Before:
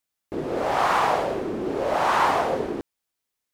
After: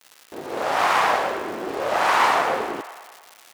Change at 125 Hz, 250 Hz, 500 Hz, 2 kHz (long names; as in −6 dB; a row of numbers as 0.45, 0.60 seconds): −7.0, −4.0, −0.5, +5.5 decibels